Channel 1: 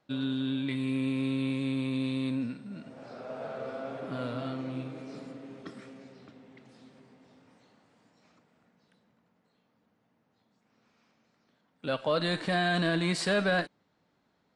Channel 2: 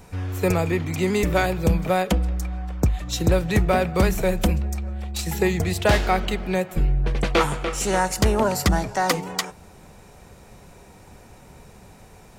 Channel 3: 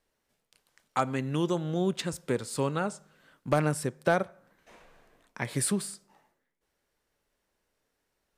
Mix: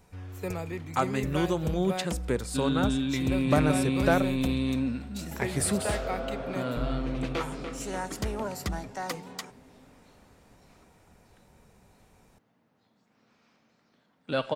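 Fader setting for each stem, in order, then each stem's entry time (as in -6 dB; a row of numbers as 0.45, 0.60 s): +3.0, -13.0, +0.5 dB; 2.45, 0.00, 0.00 s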